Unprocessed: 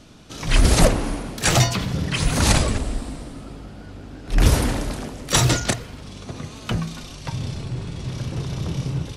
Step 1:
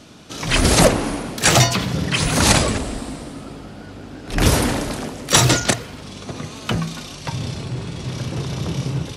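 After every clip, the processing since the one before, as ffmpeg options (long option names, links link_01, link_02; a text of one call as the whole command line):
ffmpeg -i in.wav -af "highpass=frequency=140:poles=1,asoftclip=type=hard:threshold=-6.5dB,volume=5dB" out.wav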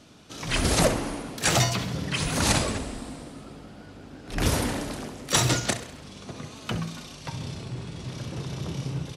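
ffmpeg -i in.wav -af "aecho=1:1:66|132|198|264|330:0.211|0.112|0.0594|0.0315|0.0167,volume=-8.5dB" out.wav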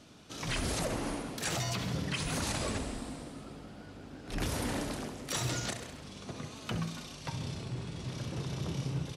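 ffmpeg -i in.wav -af "alimiter=limit=-20.5dB:level=0:latency=1:release=127,volume=-3.5dB" out.wav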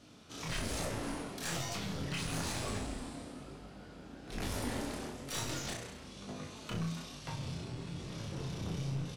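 ffmpeg -i in.wav -filter_complex "[0:a]aeval=exprs='clip(val(0),-1,0.0168)':channel_layout=same,flanger=delay=19.5:depth=6.1:speed=1.1,asplit=2[link_01][link_02];[link_02]adelay=36,volume=-6dB[link_03];[link_01][link_03]amix=inputs=2:normalize=0" out.wav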